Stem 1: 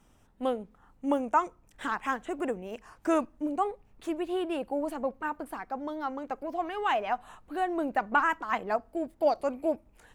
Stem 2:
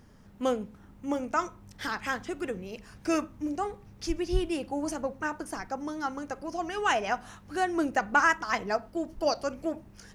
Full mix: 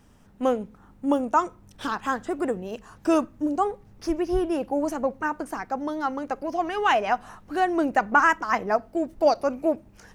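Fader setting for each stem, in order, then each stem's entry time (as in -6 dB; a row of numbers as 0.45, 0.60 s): +3.0, -3.5 dB; 0.00, 0.00 s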